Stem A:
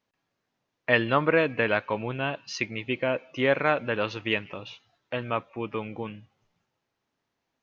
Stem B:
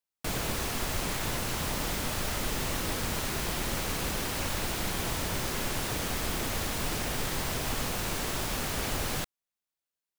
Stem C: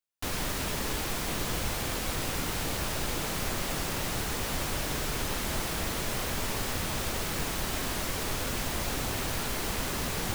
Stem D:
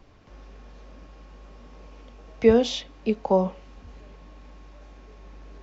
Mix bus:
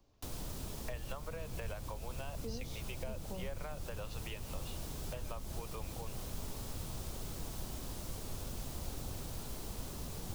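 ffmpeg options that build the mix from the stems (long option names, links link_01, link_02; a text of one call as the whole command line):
ffmpeg -i stem1.wav -i stem2.wav -i stem3.wav -i stem4.wav -filter_complex "[0:a]highpass=frequency=530:width=0.5412,highpass=frequency=530:width=1.3066,acompressor=threshold=-26dB:ratio=6,volume=1.5dB[link_01];[1:a]adelay=50,volume=-14.5dB[link_02];[2:a]volume=-7dB[link_03];[3:a]highshelf=frequency=3800:gain=9,volume=-15.5dB[link_04];[link_01][link_02][link_03][link_04]amix=inputs=4:normalize=0,equalizer=frequency=1900:width_type=o:width=1.4:gain=-10.5,acrossover=split=150[link_05][link_06];[link_06]acompressor=threshold=-45dB:ratio=5[link_07];[link_05][link_07]amix=inputs=2:normalize=0" out.wav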